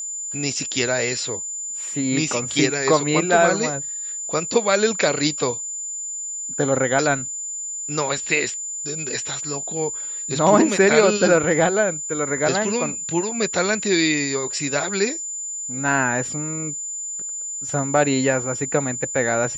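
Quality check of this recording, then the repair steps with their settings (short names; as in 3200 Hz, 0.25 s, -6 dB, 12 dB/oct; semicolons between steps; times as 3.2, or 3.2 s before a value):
tone 7100 Hz -27 dBFS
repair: notch 7100 Hz, Q 30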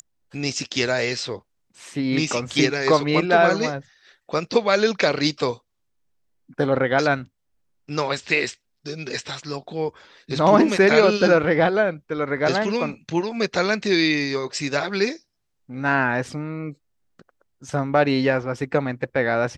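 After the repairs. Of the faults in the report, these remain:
none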